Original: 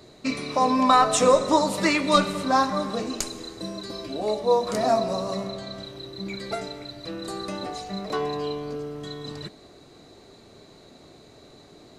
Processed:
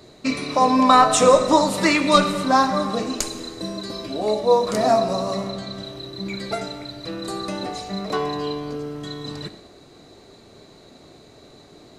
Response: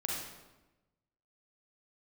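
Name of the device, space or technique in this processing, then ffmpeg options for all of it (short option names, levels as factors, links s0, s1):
keyed gated reverb: -filter_complex "[0:a]asplit=3[s0][s1][s2];[1:a]atrim=start_sample=2205[s3];[s1][s3]afir=irnorm=-1:irlink=0[s4];[s2]apad=whole_len=528572[s5];[s4][s5]sidechaingate=range=0.0224:threshold=0.00447:ratio=16:detection=peak,volume=0.251[s6];[s0][s6]amix=inputs=2:normalize=0,volume=1.26"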